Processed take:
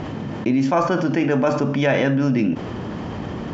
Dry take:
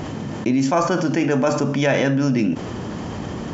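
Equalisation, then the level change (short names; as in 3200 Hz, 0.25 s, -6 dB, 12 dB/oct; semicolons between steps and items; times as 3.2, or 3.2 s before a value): LPF 3900 Hz 12 dB/oct; 0.0 dB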